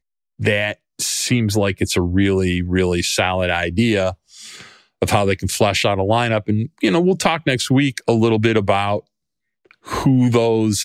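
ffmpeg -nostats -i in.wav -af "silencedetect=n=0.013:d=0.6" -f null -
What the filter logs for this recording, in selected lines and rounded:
silence_start: 9.00
silence_end: 9.71 | silence_duration: 0.71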